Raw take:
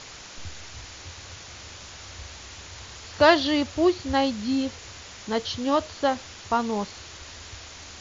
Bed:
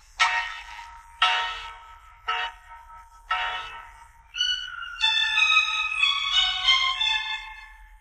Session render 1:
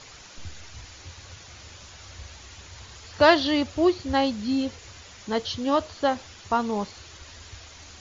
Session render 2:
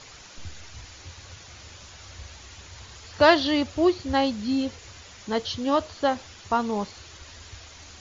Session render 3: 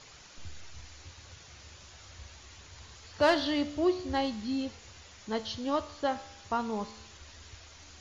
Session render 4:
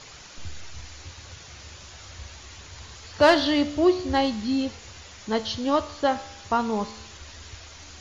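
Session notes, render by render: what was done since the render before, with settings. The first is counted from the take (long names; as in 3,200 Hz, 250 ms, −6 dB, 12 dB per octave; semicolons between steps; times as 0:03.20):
broadband denoise 6 dB, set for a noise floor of −43 dBFS
no processing that can be heard
soft clipping −9 dBFS, distortion −20 dB; tuned comb filter 73 Hz, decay 0.81 s, harmonics all, mix 60%
level +7.5 dB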